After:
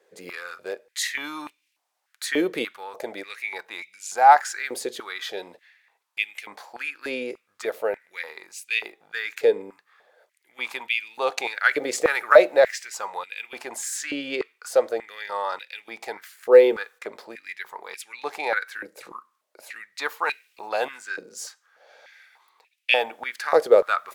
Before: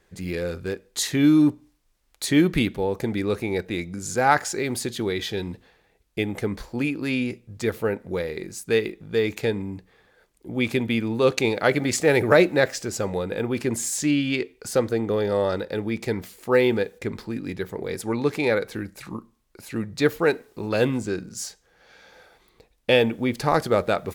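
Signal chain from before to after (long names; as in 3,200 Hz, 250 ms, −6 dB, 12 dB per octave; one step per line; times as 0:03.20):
high-pass on a step sequencer 3.4 Hz 480–2,500 Hz
level −3.5 dB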